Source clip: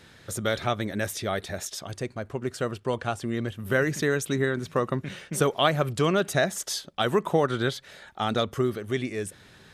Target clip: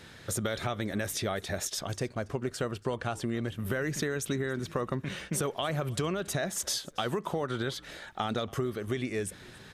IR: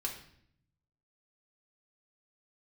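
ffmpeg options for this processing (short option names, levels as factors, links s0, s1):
-filter_complex "[0:a]alimiter=limit=0.15:level=0:latency=1:release=23,acompressor=threshold=0.0316:ratio=6,asplit=2[s0][s1];[s1]asplit=2[s2][s3];[s2]adelay=281,afreqshift=-68,volume=0.0708[s4];[s3]adelay=562,afreqshift=-136,volume=0.0234[s5];[s4][s5]amix=inputs=2:normalize=0[s6];[s0][s6]amix=inputs=2:normalize=0,volume=1.26"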